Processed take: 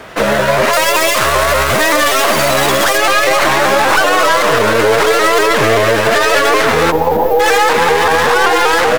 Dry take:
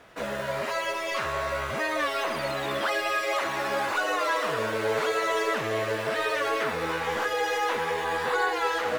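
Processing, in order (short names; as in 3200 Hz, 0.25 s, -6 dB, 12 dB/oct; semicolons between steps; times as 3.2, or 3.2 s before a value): tracing distortion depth 0.15 ms; 0.73–2.98 high shelf 6500 Hz +9.5 dB; 6.91–7.4 spectral gain 1000–12000 Hz -26 dB; feedback echo 0.251 s, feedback 56%, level -19.5 dB; maximiser +21.5 dB; shaped vibrato saw up 5.2 Hz, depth 100 cents; gain -1.5 dB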